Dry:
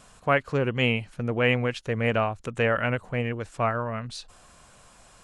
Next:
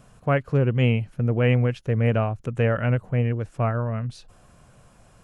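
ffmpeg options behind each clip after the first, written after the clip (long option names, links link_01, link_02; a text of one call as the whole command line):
ffmpeg -i in.wav -af "equalizer=frequency=125:width_type=o:width=1:gain=7,equalizer=frequency=1000:width_type=o:width=1:gain=-5,equalizer=frequency=2000:width_type=o:width=1:gain=-4,equalizer=frequency=4000:width_type=o:width=1:gain=-8,equalizer=frequency=8000:width_type=o:width=1:gain=-9,volume=2dB" out.wav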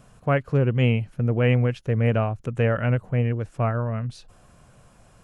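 ffmpeg -i in.wav -af anull out.wav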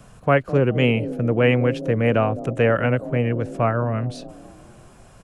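ffmpeg -i in.wav -filter_complex "[0:a]acrossover=split=190|580|910[link_01][link_02][link_03][link_04];[link_01]alimiter=level_in=4dB:limit=-24dB:level=0:latency=1:release=478,volume=-4dB[link_05];[link_02]asplit=7[link_06][link_07][link_08][link_09][link_10][link_11][link_12];[link_07]adelay=208,afreqshift=30,volume=-8dB[link_13];[link_08]adelay=416,afreqshift=60,volume=-13.7dB[link_14];[link_09]adelay=624,afreqshift=90,volume=-19.4dB[link_15];[link_10]adelay=832,afreqshift=120,volume=-25dB[link_16];[link_11]adelay=1040,afreqshift=150,volume=-30.7dB[link_17];[link_12]adelay=1248,afreqshift=180,volume=-36.4dB[link_18];[link_06][link_13][link_14][link_15][link_16][link_17][link_18]amix=inputs=7:normalize=0[link_19];[link_05][link_19][link_03][link_04]amix=inputs=4:normalize=0,volume=5.5dB" out.wav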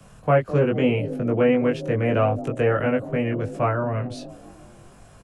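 ffmpeg -i in.wav -filter_complex "[0:a]acrossover=split=160|340|1100[link_01][link_02][link_03][link_04];[link_04]alimiter=limit=-20.5dB:level=0:latency=1:release=42[link_05];[link_01][link_02][link_03][link_05]amix=inputs=4:normalize=0,asplit=2[link_06][link_07];[link_07]adelay=20,volume=-2dB[link_08];[link_06][link_08]amix=inputs=2:normalize=0,volume=-3dB" out.wav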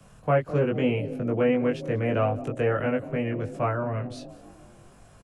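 ffmpeg -i in.wav -af "aecho=1:1:187:0.0668,volume=-4dB" out.wav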